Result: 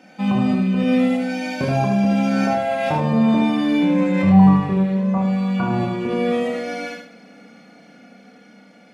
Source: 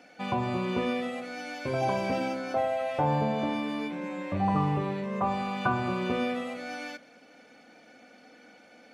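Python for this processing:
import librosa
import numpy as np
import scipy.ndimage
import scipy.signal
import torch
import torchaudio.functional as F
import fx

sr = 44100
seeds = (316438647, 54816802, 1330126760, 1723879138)

p1 = fx.doppler_pass(x, sr, speed_mps=10, closest_m=7.1, pass_at_s=3.76)
p2 = fx.peak_eq(p1, sr, hz=190.0, db=14.0, octaves=0.55)
p3 = fx.over_compress(p2, sr, threshold_db=-39.0, ratio=-1.0)
p4 = p2 + (p3 * librosa.db_to_amplitude(2.0))
p5 = fx.doubler(p4, sr, ms=31.0, db=-5)
p6 = fx.echo_feedback(p5, sr, ms=75, feedback_pct=29, wet_db=-4.0)
y = p6 * librosa.db_to_amplitude(5.0)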